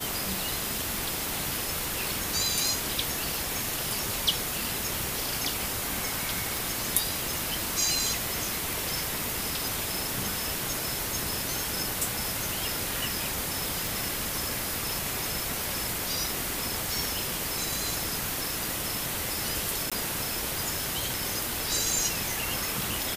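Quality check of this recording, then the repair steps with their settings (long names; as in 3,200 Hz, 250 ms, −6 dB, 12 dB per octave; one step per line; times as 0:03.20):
0:06.57: click
0:13.87: click
0:19.90–0:19.92: drop-out 16 ms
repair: click removal
repair the gap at 0:19.90, 16 ms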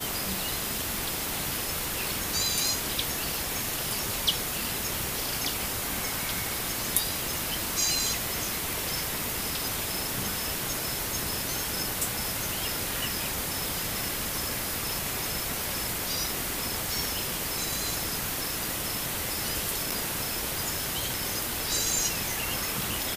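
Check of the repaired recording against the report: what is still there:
none of them is left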